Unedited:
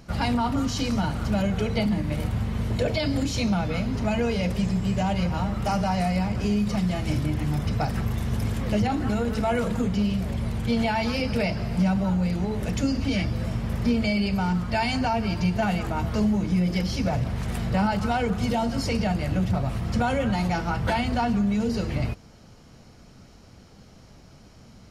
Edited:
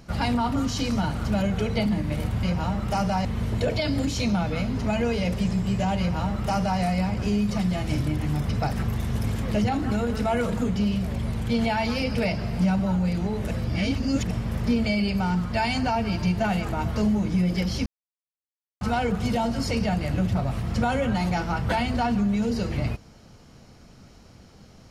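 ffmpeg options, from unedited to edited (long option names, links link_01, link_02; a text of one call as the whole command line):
ffmpeg -i in.wav -filter_complex "[0:a]asplit=7[link_01][link_02][link_03][link_04][link_05][link_06][link_07];[link_01]atrim=end=2.432[link_08];[link_02]atrim=start=5.168:end=5.992[link_09];[link_03]atrim=start=2.428:end=12.692[link_10];[link_04]atrim=start=12.688:end=13.492,asetpts=PTS-STARTPTS,areverse[link_11];[link_05]atrim=start=13.488:end=17.04,asetpts=PTS-STARTPTS,afade=type=out:start_time=3.548:duration=0.004:curve=hsin[link_12];[link_06]atrim=start=17.04:end=17.99,asetpts=PTS-STARTPTS,volume=0[link_13];[link_07]atrim=start=17.99,asetpts=PTS-STARTPTS,afade=type=in:duration=0.004:curve=hsin[link_14];[link_08][link_09]acrossfade=duration=0.004:curve1=hsin:curve2=hsin[link_15];[link_15][link_10]acrossfade=duration=0.004:curve1=hsin:curve2=hsin[link_16];[link_16][link_11]acrossfade=duration=0.004:curve1=hsin:curve2=hsin[link_17];[link_12][link_13][link_14]concat=n=3:v=0:a=1[link_18];[link_17][link_18]acrossfade=duration=0.004:curve1=hsin:curve2=hsin" out.wav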